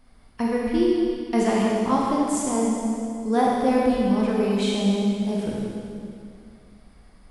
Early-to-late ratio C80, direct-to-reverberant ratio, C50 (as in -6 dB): -0.5 dB, -4.0 dB, -2.5 dB